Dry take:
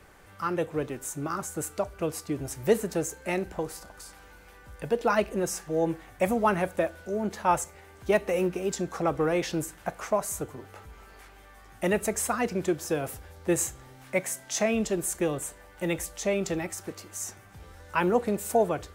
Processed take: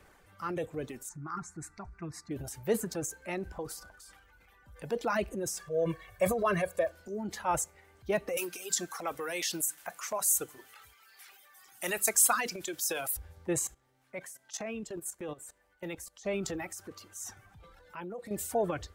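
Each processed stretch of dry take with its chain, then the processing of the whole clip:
1.09–2.31 s: low-pass 4.8 kHz + static phaser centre 1.3 kHz, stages 4 + comb 5.7 ms, depth 47%
5.60–6.92 s: high-pass 77 Hz 6 dB/octave + comb 1.8 ms, depth 92%
8.37–13.17 s: tilt EQ +4.5 dB/octave + hum notches 50/100/150/200/250/300 Hz
13.67–16.26 s: level held to a coarse grid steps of 15 dB + bass shelf 150 Hz -6 dB
17.60–18.31 s: comb 5.9 ms, depth 51% + compression 2:1, threshold -42 dBFS
whole clip: reverb removal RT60 2 s; transient shaper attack -1 dB, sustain +8 dB; trim -6 dB

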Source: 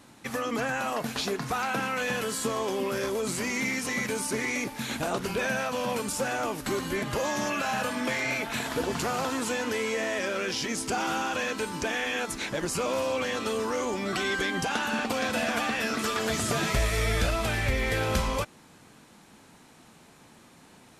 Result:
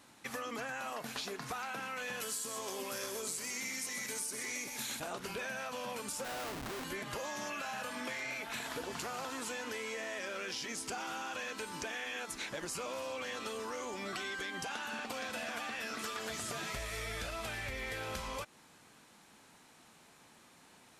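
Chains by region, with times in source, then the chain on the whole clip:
2.20–5.00 s: tone controls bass -1 dB, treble +10 dB + delay 126 ms -9 dB
6.24–6.84 s: Savitzky-Golay filter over 41 samples + Schmitt trigger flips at -41.5 dBFS
whole clip: bass shelf 470 Hz -8 dB; compression, threshold -33 dBFS; trim -4 dB

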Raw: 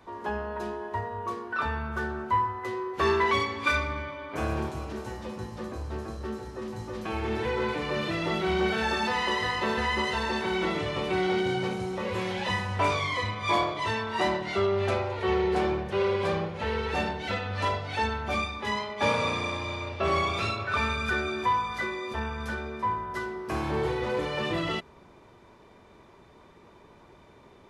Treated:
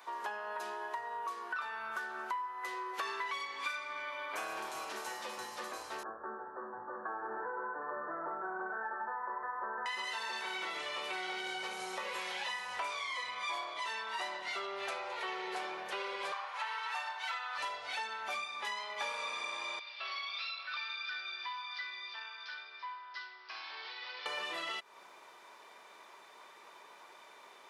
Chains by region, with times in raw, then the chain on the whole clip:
6.03–9.86 s: Chebyshev low-pass 1.7 kHz, order 8 + upward compressor, threshold -38 dBFS
16.32–17.58 s: resonant high-pass 1 kHz, resonance Q 2.6 + doubling 32 ms -12.5 dB
19.79–24.26 s: steep low-pass 5.1 kHz 72 dB/octave + upward compressor, threshold -30 dBFS + differentiator
whole clip: high-pass 870 Hz 12 dB/octave; treble shelf 7.7 kHz +7 dB; compression, threshold -41 dBFS; trim +4 dB

